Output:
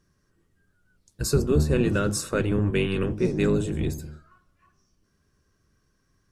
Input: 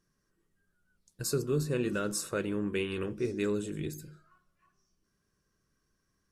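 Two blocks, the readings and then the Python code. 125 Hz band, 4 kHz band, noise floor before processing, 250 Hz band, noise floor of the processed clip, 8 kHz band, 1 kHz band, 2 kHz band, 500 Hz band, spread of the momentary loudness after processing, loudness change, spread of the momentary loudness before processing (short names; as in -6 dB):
+11.5 dB, +6.0 dB, -78 dBFS, +8.5 dB, -70 dBFS, +4.5 dB, +7.0 dB, +7.0 dB, +7.0 dB, 9 LU, +8.5 dB, 7 LU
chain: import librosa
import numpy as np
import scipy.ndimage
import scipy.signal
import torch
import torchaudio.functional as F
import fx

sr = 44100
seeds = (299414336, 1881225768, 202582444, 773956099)

y = fx.octave_divider(x, sr, octaves=1, level_db=1.0)
y = fx.high_shelf(y, sr, hz=10000.0, db=-7.0)
y = F.gain(torch.from_numpy(y), 7.0).numpy()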